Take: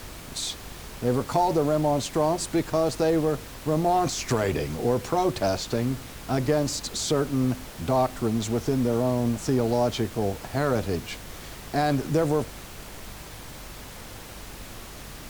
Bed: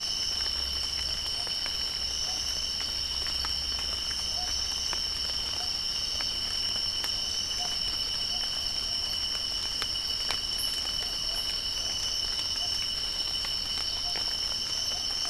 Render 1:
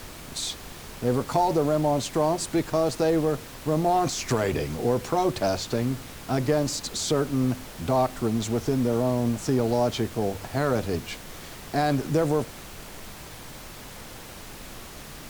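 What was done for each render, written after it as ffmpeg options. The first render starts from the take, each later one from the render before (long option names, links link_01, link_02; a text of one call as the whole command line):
ffmpeg -i in.wav -af "bandreject=frequency=50:width_type=h:width=4,bandreject=frequency=100:width_type=h:width=4" out.wav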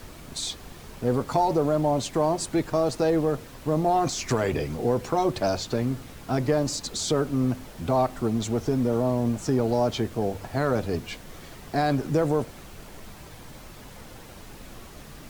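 ffmpeg -i in.wav -af "afftdn=noise_reduction=6:noise_floor=-42" out.wav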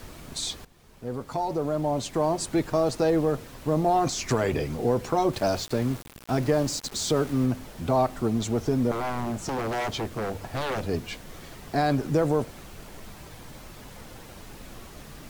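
ffmpeg -i in.wav -filter_complex "[0:a]asettb=1/sr,asplit=3[link_01][link_02][link_03];[link_01]atrim=end=5.334[link_04];[link_02]atrim=start=5.33:end=7.46,asetpts=PTS-STARTPTS,afade=type=in:duration=0.004:curve=qsin,afade=type=out:start_time=2.126:duration=0.004:curve=qsin,aeval=exprs='val(0)*gte(abs(val(0)),0.015)':channel_layout=same[link_05];[link_03]atrim=start=7.456[link_06];[link_04][link_05]acrossfade=duration=0.004:curve1=hsin:curve2=qsin[link_07];[link_07][link_06]acrossfade=duration=0.004:curve1=qsin:curve2=hsin,asettb=1/sr,asplit=3[link_08][link_09][link_10];[link_08]atrim=end=8.914[link_11];[link_09]atrim=start=8.91:end=10.84,asetpts=PTS-STARTPTS,afade=type=in:duration=0.004:curve=qsin,afade=type=out:start_time=1.926:duration=0.004:curve=qsin,aeval=exprs='0.0668*(abs(mod(val(0)/0.0668+3,4)-2)-1)':channel_layout=same[link_12];[link_10]atrim=start=10.836[link_13];[link_11][link_12]acrossfade=duration=0.004:curve1=hsin:curve2=qsin[link_14];[link_14][link_13]acrossfade=duration=0.004:curve1=qsin:curve2=hsin,asplit=2[link_15][link_16];[link_15]atrim=end=0.65,asetpts=PTS-STARTPTS,afade=type=out:start_time=0.646:duration=0.004:curve=hsin:silence=0.149624[link_17];[link_16]atrim=start=0.65,asetpts=PTS-STARTPTS,afade=type=in:duration=1.89:silence=0.149624[link_18];[link_17][link_18]concat=n=2:v=0:a=1" out.wav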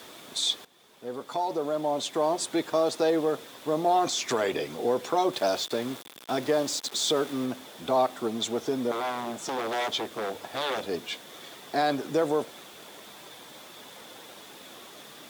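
ffmpeg -i in.wav -af "highpass=330,equalizer=frequency=3500:width=7.3:gain=11.5" out.wav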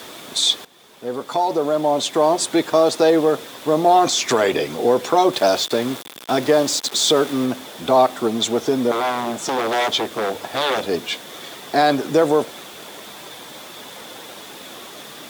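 ffmpeg -i in.wav -af "volume=9.5dB" out.wav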